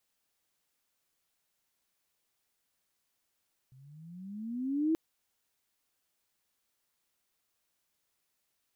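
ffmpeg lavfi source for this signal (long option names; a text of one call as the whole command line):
ffmpeg -f lavfi -i "aevalsrc='pow(10,(-24+30*(t/1.23-1))/20)*sin(2*PI*127*1.23/(16.5*log(2)/12)*(exp(16.5*log(2)/12*t/1.23)-1))':duration=1.23:sample_rate=44100" out.wav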